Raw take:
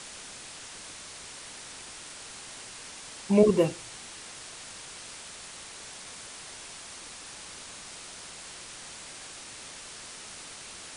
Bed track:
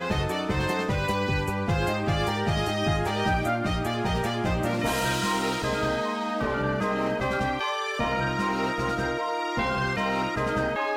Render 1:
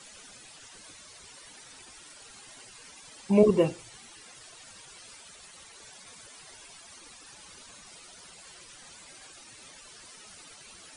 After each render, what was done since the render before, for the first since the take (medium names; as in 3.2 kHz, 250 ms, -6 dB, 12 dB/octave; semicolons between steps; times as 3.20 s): noise reduction 14 dB, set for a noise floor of -45 dBFS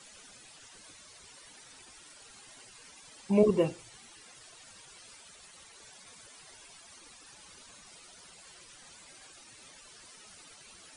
trim -3.5 dB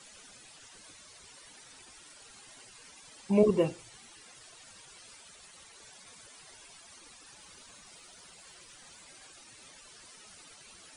7.40–9.02 s: block-companded coder 7-bit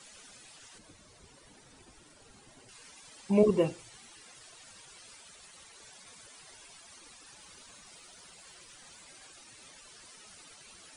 0.78–2.69 s: tilt shelf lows +7 dB, about 700 Hz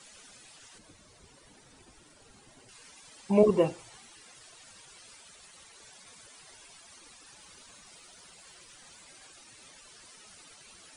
dynamic bell 830 Hz, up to +6 dB, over -57 dBFS, Q 1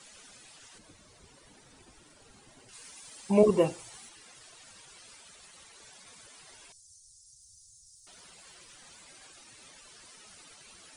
2.73–4.09 s: treble shelf 7 kHz +9.5 dB; 6.72–8.07 s: elliptic band-stop 110–5600 Hz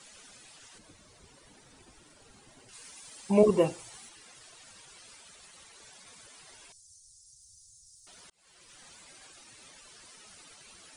8.30–8.80 s: fade in linear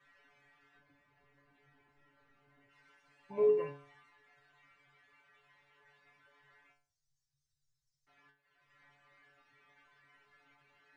resonant low-pass 1.9 kHz, resonance Q 2.3; inharmonic resonator 140 Hz, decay 0.46 s, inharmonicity 0.002